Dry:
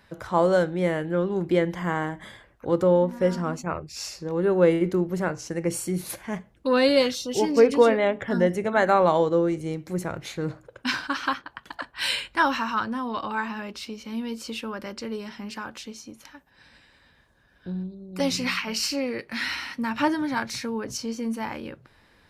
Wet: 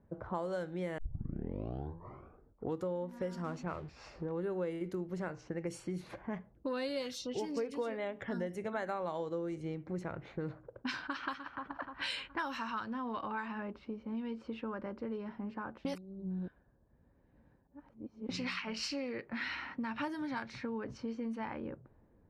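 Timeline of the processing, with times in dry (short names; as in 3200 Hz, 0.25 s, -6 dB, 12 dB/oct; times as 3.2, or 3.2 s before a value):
0.98 tape start 1.87 s
3.44–4.26 zero-crossing step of -40 dBFS
11.02–11.58 echo throw 0.3 s, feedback 55%, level -11 dB
15.85–18.29 reverse
whole clip: low-pass opened by the level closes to 450 Hz, open at -20 dBFS; compressor 5:1, threshold -33 dBFS; gain -3 dB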